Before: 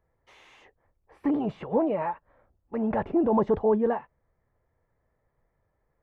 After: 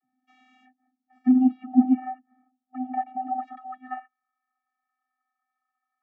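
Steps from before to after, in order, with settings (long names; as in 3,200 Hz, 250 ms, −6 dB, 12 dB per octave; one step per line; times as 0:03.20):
high-pass filter sweep 130 Hz → 1,200 Hz, 0:01.53–0:03.59
channel vocoder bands 32, square 255 Hz
0:01.33–0:03.43: high-frequency loss of the air 190 metres
level +3.5 dB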